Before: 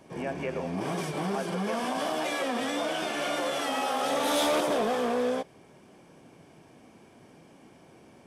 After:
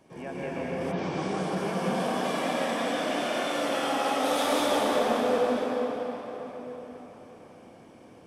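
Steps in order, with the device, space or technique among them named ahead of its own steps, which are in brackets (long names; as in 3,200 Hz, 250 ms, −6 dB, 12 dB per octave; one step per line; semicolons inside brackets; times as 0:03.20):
cathedral (convolution reverb RT60 4.8 s, pre-delay 117 ms, DRR −6 dB)
0:00.91–0:01.55: low-pass filter 4,600 Hz → 12,000 Hz 24 dB per octave
level −5.5 dB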